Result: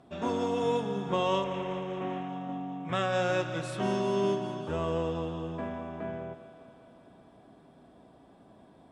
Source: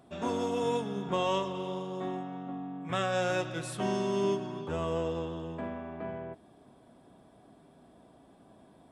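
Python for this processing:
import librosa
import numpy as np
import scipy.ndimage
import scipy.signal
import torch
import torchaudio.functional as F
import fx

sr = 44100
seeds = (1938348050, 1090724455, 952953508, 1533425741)

y = fx.cvsd(x, sr, bps=16000, at=(1.44, 2.29))
y = fx.air_absorb(y, sr, metres=54.0)
y = fx.echo_thinned(y, sr, ms=196, feedback_pct=72, hz=210.0, wet_db=-13)
y = F.gain(torch.from_numpy(y), 1.5).numpy()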